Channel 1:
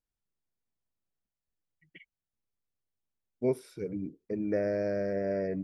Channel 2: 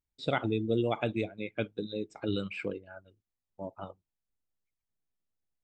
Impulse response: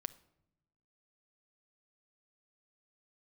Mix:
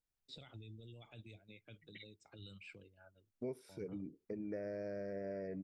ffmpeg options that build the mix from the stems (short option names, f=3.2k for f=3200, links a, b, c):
-filter_complex "[0:a]volume=-3dB[a];[1:a]alimiter=level_in=1.5dB:limit=-24dB:level=0:latency=1:release=22,volume=-1.5dB,acrossover=split=120|3000[b][c][d];[c]acompressor=threshold=-49dB:ratio=10[e];[b][e][d]amix=inputs=3:normalize=0,adelay=100,volume=-9dB[f];[a][f]amix=inputs=2:normalize=0,acompressor=threshold=-43dB:ratio=3"